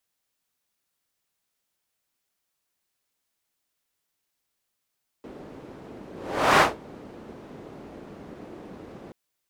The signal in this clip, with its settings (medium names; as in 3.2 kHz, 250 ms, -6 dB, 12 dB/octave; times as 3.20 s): whoosh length 3.88 s, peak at 1.36 s, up 0.51 s, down 0.19 s, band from 340 Hz, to 1.1 kHz, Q 1.1, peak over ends 26.5 dB